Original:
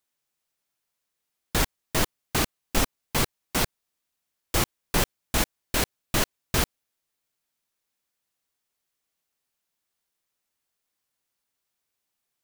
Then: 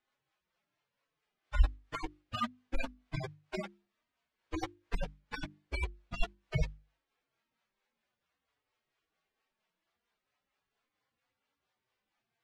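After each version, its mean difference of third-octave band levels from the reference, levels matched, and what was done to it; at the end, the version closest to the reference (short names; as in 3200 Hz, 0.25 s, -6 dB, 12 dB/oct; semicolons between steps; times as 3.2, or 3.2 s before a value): 14.0 dB: median-filter separation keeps harmonic; harmonic tremolo 4.4 Hz, depth 50%, crossover 430 Hz; LPF 2700 Hz 12 dB/oct; notches 50/100/150/200/250/300/350 Hz; gain +11.5 dB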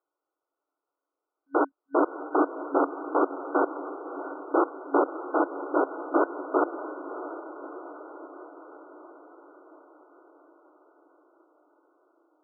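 29.5 dB: FFT band-pass 270–1500 Hz; low shelf 360 Hz +8 dB; diffused feedback echo 0.629 s, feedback 63%, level -11.5 dB; gain +4.5 dB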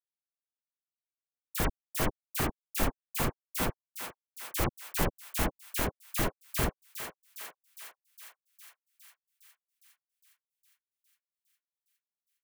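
10.5 dB: bell 5000 Hz -10 dB 1.8 oct; companded quantiser 4-bit; dispersion lows, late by 52 ms, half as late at 1900 Hz; on a send: thinning echo 0.409 s, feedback 70%, high-pass 760 Hz, level -8 dB; on the sum: gain -4.5 dB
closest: third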